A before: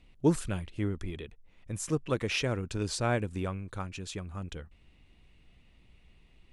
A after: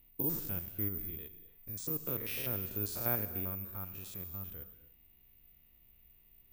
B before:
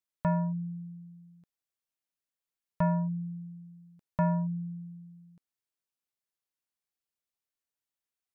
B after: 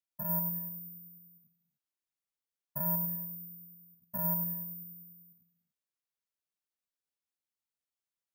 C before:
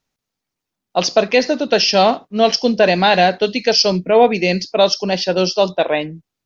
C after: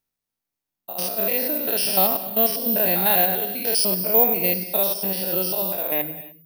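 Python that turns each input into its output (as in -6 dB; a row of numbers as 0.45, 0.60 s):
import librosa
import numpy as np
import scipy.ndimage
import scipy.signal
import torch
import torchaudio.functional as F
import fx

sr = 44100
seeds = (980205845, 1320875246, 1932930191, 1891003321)

y = fx.spec_steps(x, sr, hold_ms=100)
y = (np.kron(y[::3], np.eye(3)[0]) * 3)[:len(y)]
y = fx.rev_gated(y, sr, seeds[0], gate_ms=320, shape='flat', drr_db=11.0)
y = y * librosa.db_to_amplitude(-8.5)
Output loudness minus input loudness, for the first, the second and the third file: -2.5, -1.0, -4.0 LU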